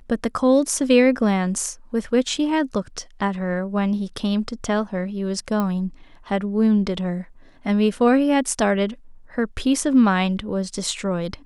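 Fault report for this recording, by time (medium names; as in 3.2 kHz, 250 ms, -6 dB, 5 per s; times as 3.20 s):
5.60 s: pop -12 dBFS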